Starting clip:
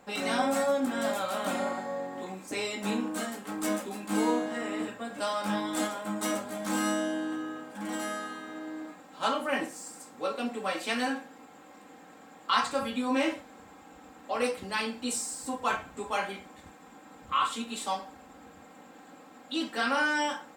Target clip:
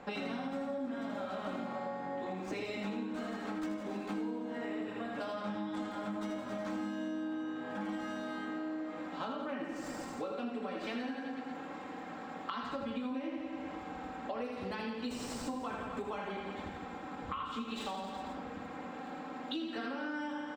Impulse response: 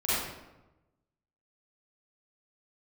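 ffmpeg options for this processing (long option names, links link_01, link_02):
-filter_complex "[0:a]aemphasis=mode=reproduction:type=cd,acrossover=split=410[link_01][link_02];[link_02]acompressor=threshold=-37dB:ratio=6[link_03];[link_01][link_03]amix=inputs=2:normalize=0,acrossover=split=6700[link_04][link_05];[link_05]acrusher=samples=22:mix=1:aa=0.000001:lfo=1:lforange=13.2:lforate=2.4[link_06];[link_04][link_06]amix=inputs=2:normalize=0,aecho=1:1:80|168|264.8|371.3|488.4:0.631|0.398|0.251|0.158|0.1,acompressor=threshold=-42dB:ratio=6,asettb=1/sr,asplit=3[link_07][link_08][link_09];[link_07]atrim=end=5.354[link_10];[link_08]atrim=start=5.35:end=5.91,asetpts=PTS-STARTPTS,afade=type=in:duration=0.004:curve=qsin,afade=type=out:start_time=0.556:duration=0.004:curve=qsin,lowpass=11000[link_11];[link_09]atrim=start=5.906[link_12];[link_10][link_11]acrossfade=duration=0.004:curve1=hsin:curve2=qsin[link_13];[link_13][link_12]acrossfade=duration=0.004:curve1=qsin:curve2=hsin,volume=5.5dB"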